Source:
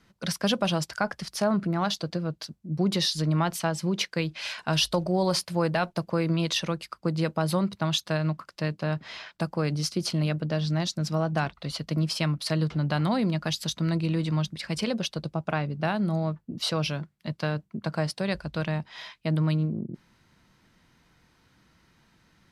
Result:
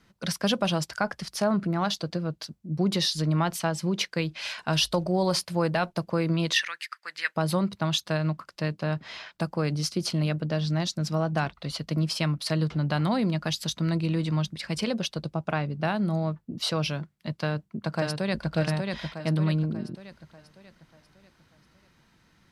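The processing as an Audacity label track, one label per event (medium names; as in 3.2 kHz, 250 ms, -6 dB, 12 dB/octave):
6.530000	7.360000	resonant high-pass 1.8 kHz, resonance Q 5.4
17.370000	18.540000	echo throw 590 ms, feedback 45%, level -3.5 dB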